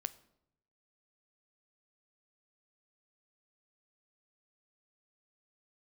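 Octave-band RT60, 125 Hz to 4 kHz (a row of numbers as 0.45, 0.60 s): 1.1, 0.90, 0.85, 0.70, 0.60, 0.55 s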